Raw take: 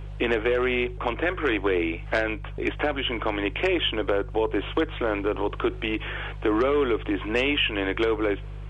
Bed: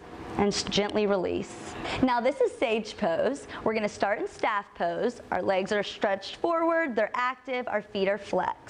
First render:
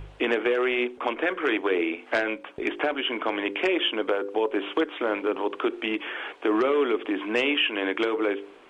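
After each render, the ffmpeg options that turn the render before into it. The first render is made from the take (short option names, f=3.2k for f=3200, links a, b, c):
-af "bandreject=f=50:t=h:w=4,bandreject=f=100:t=h:w=4,bandreject=f=150:t=h:w=4,bandreject=f=200:t=h:w=4,bandreject=f=250:t=h:w=4,bandreject=f=300:t=h:w=4,bandreject=f=350:t=h:w=4,bandreject=f=400:t=h:w=4,bandreject=f=450:t=h:w=4,bandreject=f=500:t=h:w=4,bandreject=f=550:t=h:w=4"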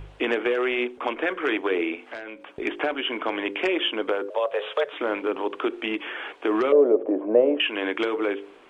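-filter_complex "[0:a]asettb=1/sr,asplit=3[a][b][c];[a]atrim=end=2.114[d];[b]atrim=start=2.11:end=2.56,asetpts=PTS-STARTPTS,afade=t=in:d=0.004:c=qsin,afade=t=out:st=0.446:d=0.004:c=qsin,acompressor=threshold=-38dB:ratio=2.5:attack=3.2:release=140:knee=1:detection=peak[e];[c]atrim=start=2.556[f];[d][e]acrossfade=d=0.004:c1=hsin:c2=qsin[g];[g][f]acrossfade=d=0.004:c1=qsin:c2=hsin,asettb=1/sr,asplit=3[h][i][j];[h]atrim=end=4.304[k];[i]atrim=start=4.3:end=4.93,asetpts=PTS-STARTPTS,afade=t=in:d=0.004:c=qsin,afade=t=out:st=0.626:d=0.004:c=qsin,afreqshift=130[l];[j]atrim=start=4.926[m];[k][l]acrossfade=d=0.004:c1=hsin:c2=qsin[n];[n][m]acrossfade=d=0.004:c1=qsin:c2=hsin,asettb=1/sr,asplit=3[o][p][q];[o]atrim=end=6.724[r];[p]atrim=start=6.72:end=7.6,asetpts=PTS-STARTPTS,afade=t=in:d=0.004:c=qsin,afade=t=out:st=0.876:d=0.004:c=qsin,lowpass=f=580:t=q:w=6.1[s];[q]atrim=start=7.596[t];[r][s]acrossfade=d=0.004:c1=hsin:c2=qsin[u];[u][t]acrossfade=d=0.004:c1=qsin:c2=hsin"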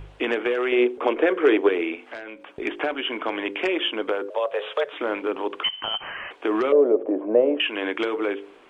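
-filter_complex "[0:a]asettb=1/sr,asplit=3[a][b][c];[a]atrim=end=0.724[d];[b]atrim=start=0.72:end=1.69,asetpts=PTS-STARTPTS,afade=t=in:d=0.004:c=qsin,afade=t=out:st=0.966:d=0.004:c=qsin,equalizer=f=430:t=o:w=1.1:g=10.5[e];[c]atrim=start=1.686[f];[d][e]acrossfade=d=0.004:c1=hsin:c2=qsin[g];[g][f]acrossfade=d=0.004:c1=qsin:c2=hsin,asettb=1/sr,asplit=3[h][i][j];[h]atrim=end=5.634[k];[i]atrim=start=5.63:end=6.31,asetpts=PTS-STARTPTS,afade=t=in:d=0.004:c=qsin,afade=t=out:st=0.676:d=0.004:c=qsin,lowpass=f=2.9k:t=q:w=0.5098,lowpass=f=2.9k:t=q:w=0.6013,lowpass=f=2.9k:t=q:w=0.9,lowpass=f=2.9k:t=q:w=2.563,afreqshift=-3400[l];[j]atrim=start=6.306[m];[k][l]acrossfade=d=0.004:c1=hsin:c2=qsin[n];[n][m]acrossfade=d=0.004:c1=qsin:c2=hsin"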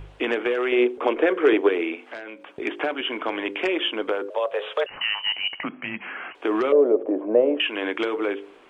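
-filter_complex "[0:a]asettb=1/sr,asplit=3[a][b][c];[a]atrim=end=1.534[d];[b]atrim=start=1.53:end=3.01,asetpts=PTS-STARTPTS,afade=t=in:d=0.004:c=qsin,afade=t=out:st=1.476:d=0.004:c=qsin,highpass=100[e];[c]atrim=start=3.006[f];[d][e]acrossfade=d=0.004:c1=hsin:c2=qsin[g];[g][f]acrossfade=d=0.004:c1=qsin:c2=hsin,asettb=1/sr,asplit=3[h][i][j];[h]atrim=end=4.864[k];[i]atrim=start=4.86:end=6.35,asetpts=PTS-STARTPTS,afade=t=in:d=0.004:c=qsin,afade=t=out:st=1.486:d=0.004:c=qsin,lowpass=f=2.8k:t=q:w=0.5098,lowpass=f=2.8k:t=q:w=0.6013,lowpass=f=2.8k:t=q:w=0.9,lowpass=f=2.8k:t=q:w=2.563,afreqshift=-3300[l];[j]atrim=start=6.346[m];[k][l]acrossfade=d=0.004:c1=hsin:c2=qsin[n];[n][m]acrossfade=d=0.004:c1=qsin:c2=hsin"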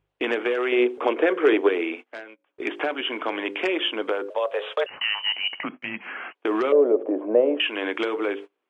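-af "highpass=f=160:p=1,agate=range=-28dB:threshold=-36dB:ratio=16:detection=peak"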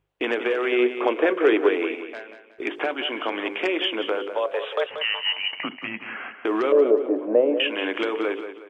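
-af "aecho=1:1:183|366|549|732:0.316|0.111|0.0387|0.0136"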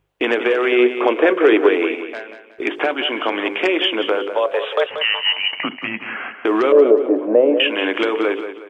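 -af "volume=6.5dB,alimiter=limit=-3dB:level=0:latency=1"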